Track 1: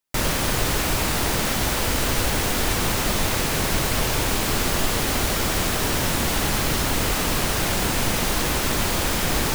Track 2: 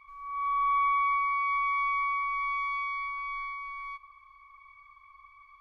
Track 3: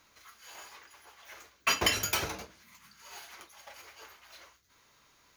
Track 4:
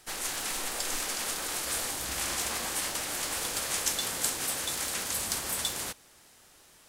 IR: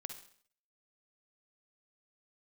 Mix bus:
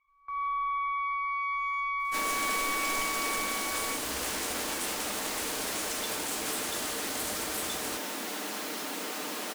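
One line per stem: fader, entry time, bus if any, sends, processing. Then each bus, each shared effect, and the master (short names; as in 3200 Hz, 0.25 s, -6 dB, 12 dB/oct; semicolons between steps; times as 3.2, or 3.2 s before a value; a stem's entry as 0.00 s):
-12.5 dB, 2.00 s, no send, elliptic high-pass 210 Hz, stop band 40 dB; comb 6.6 ms, depth 42%; fast leveller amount 50%
+0.5 dB, 0.00 s, no send, compressor, threshold -30 dBFS, peak gain reduction 6.5 dB; bell 3600 Hz +4.5 dB 1.2 oct
-17.0 dB, 1.15 s, no send, dry
-3.0 dB, 2.05 s, no send, limiter -22 dBFS, peak gain reduction 11 dB; vibrato 2 Hz 10 cents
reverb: off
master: gate with hold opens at -33 dBFS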